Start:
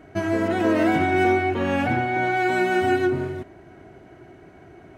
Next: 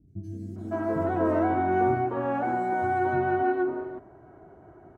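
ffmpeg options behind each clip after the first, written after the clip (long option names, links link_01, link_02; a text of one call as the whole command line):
ffmpeg -i in.wav -filter_complex "[0:a]highshelf=frequency=1700:width_type=q:width=1.5:gain=-13.5,acrossover=split=230|4400[link_01][link_02][link_03];[link_03]adelay=80[link_04];[link_02]adelay=560[link_05];[link_01][link_05][link_04]amix=inputs=3:normalize=0,volume=-4dB" out.wav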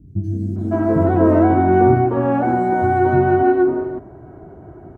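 ffmpeg -i in.wav -af "lowshelf=frequency=450:gain=11,volume=5dB" out.wav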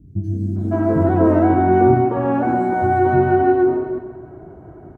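ffmpeg -i in.wav -af "aecho=1:1:133|266|399|532|665|798:0.251|0.138|0.076|0.0418|0.023|0.0126,volume=-1dB" out.wav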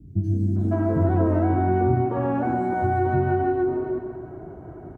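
ffmpeg -i in.wav -filter_complex "[0:a]acrossover=split=130[link_01][link_02];[link_02]acompressor=threshold=-24dB:ratio=2.5[link_03];[link_01][link_03]amix=inputs=2:normalize=0" out.wav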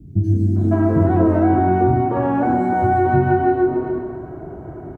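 ffmpeg -i in.wav -filter_complex "[0:a]asplit=2[link_01][link_02];[link_02]adelay=28,volume=-8dB[link_03];[link_01][link_03]amix=inputs=2:normalize=0,volume=5.5dB" out.wav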